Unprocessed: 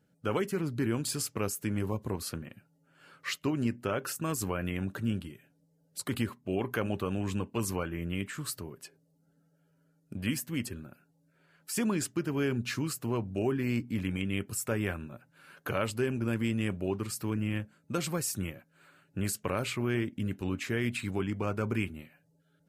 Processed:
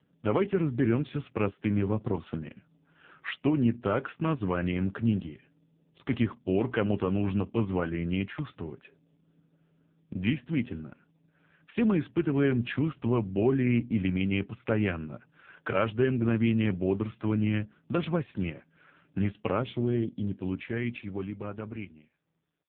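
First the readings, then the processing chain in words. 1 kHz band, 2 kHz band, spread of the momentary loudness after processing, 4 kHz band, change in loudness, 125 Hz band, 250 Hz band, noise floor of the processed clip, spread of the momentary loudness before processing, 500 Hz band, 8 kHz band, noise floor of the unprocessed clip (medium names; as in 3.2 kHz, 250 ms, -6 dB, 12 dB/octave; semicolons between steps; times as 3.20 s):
+2.0 dB, +1.0 dB, 13 LU, -3.5 dB, +3.5 dB, +4.0 dB, +5.0 dB, -69 dBFS, 10 LU, +4.0 dB, under -40 dB, -70 dBFS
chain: fade out at the end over 3.49 s; time-frequency box 19.61–20.37 s, 730–3000 Hz -11 dB; trim +5.5 dB; AMR-NB 5.15 kbps 8 kHz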